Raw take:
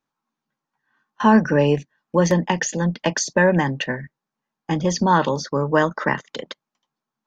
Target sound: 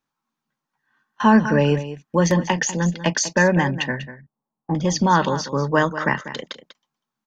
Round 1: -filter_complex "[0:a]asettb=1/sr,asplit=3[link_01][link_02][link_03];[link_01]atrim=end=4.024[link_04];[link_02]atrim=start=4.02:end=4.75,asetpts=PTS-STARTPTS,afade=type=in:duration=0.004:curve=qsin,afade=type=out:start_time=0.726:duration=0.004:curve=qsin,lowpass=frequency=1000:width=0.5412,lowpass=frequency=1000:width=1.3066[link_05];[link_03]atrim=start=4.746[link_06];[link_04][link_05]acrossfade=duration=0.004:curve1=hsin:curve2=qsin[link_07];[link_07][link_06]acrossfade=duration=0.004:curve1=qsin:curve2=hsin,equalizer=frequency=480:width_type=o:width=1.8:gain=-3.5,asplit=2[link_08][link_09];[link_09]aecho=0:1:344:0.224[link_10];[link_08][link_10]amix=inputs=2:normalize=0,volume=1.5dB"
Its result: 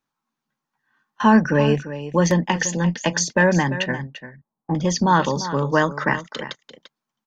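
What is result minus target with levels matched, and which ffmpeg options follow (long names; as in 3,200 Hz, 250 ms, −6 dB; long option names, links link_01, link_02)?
echo 150 ms late
-filter_complex "[0:a]asettb=1/sr,asplit=3[link_01][link_02][link_03];[link_01]atrim=end=4.024[link_04];[link_02]atrim=start=4.02:end=4.75,asetpts=PTS-STARTPTS,afade=type=in:duration=0.004:curve=qsin,afade=type=out:start_time=0.726:duration=0.004:curve=qsin,lowpass=frequency=1000:width=0.5412,lowpass=frequency=1000:width=1.3066[link_05];[link_03]atrim=start=4.746[link_06];[link_04][link_05]acrossfade=duration=0.004:curve1=hsin:curve2=qsin[link_07];[link_07][link_06]acrossfade=duration=0.004:curve1=qsin:curve2=hsin,equalizer=frequency=480:width_type=o:width=1.8:gain=-3.5,asplit=2[link_08][link_09];[link_09]aecho=0:1:194:0.224[link_10];[link_08][link_10]amix=inputs=2:normalize=0,volume=1.5dB"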